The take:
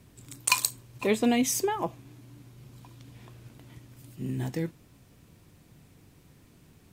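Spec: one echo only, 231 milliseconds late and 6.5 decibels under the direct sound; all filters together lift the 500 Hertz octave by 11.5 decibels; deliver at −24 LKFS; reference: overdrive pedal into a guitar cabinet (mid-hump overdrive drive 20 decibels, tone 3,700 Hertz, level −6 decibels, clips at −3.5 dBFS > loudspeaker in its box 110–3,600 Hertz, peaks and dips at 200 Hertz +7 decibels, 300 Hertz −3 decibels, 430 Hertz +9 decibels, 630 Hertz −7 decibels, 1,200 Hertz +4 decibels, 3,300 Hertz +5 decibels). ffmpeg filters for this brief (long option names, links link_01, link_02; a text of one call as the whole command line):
ffmpeg -i in.wav -filter_complex "[0:a]equalizer=frequency=500:width_type=o:gain=7.5,aecho=1:1:231:0.473,asplit=2[link_01][link_02];[link_02]highpass=frequency=720:poles=1,volume=20dB,asoftclip=type=tanh:threshold=-3.5dB[link_03];[link_01][link_03]amix=inputs=2:normalize=0,lowpass=frequency=3700:poles=1,volume=-6dB,highpass=110,equalizer=frequency=200:width_type=q:width=4:gain=7,equalizer=frequency=300:width_type=q:width=4:gain=-3,equalizer=frequency=430:width_type=q:width=4:gain=9,equalizer=frequency=630:width_type=q:width=4:gain=-7,equalizer=frequency=1200:width_type=q:width=4:gain=4,equalizer=frequency=3300:width_type=q:width=4:gain=5,lowpass=frequency=3600:width=0.5412,lowpass=frequency=3600:width=1.3066,volume=-7.5dB" out.wav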